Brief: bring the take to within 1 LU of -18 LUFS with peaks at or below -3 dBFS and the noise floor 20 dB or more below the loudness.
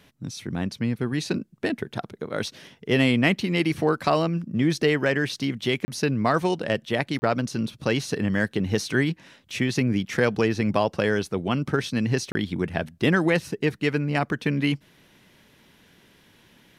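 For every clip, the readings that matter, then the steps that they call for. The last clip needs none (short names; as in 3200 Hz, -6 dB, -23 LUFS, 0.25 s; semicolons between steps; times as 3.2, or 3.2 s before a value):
dropouts 3; longest dropout 30 ms; loudness -25.0 LUFS; peak -7.5 dBFS; loudness target -18.0 LUFS
-> interpolate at 5.85/7.19/12.32, 30 ms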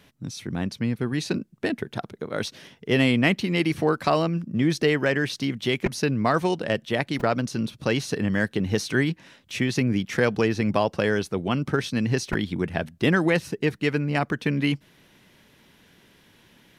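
dropouts 0; loudness -25.0 LUFS; peak -7.5 dBFS; loudness target -18.0 LUFS
-> gain +7 dB; limiter -3 dBFS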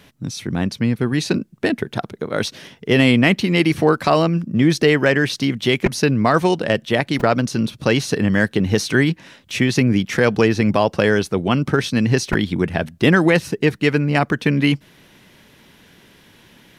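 loudness -18.0 LUFS; peak -3.0 dBFS; noise floor -51 dBFS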